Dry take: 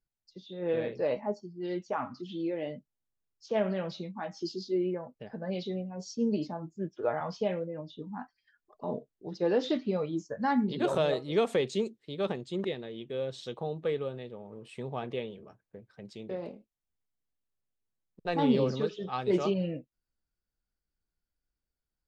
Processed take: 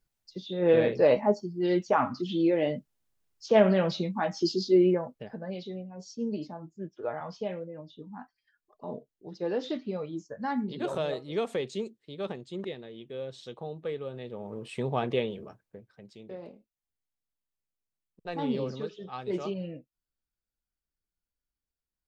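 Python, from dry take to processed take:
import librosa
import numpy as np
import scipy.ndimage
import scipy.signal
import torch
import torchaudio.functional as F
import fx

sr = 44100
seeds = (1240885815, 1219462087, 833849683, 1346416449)

y = fx.gain(x, sr, db=fx.line((4.93, 8.5), (5.57, -3.5), (14.01, -3.5), (14.46, 7.0), (15.43, 7.0), (16.08, -5.0)))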